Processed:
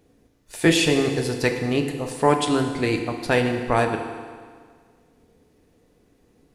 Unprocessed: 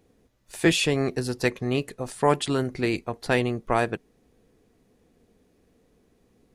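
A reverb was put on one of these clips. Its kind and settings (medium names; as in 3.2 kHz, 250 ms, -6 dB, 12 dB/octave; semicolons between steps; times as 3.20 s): FDN reverb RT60 1.8 s, low-frequency decay 0.9×, high-frequency decay 0.9×, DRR 4 dB; trim +2 dB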